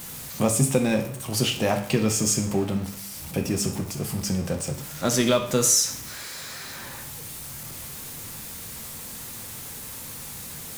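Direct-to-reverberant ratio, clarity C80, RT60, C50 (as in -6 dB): 4.5 dB, 13.5 dB, 0.55 s, 9.5 dB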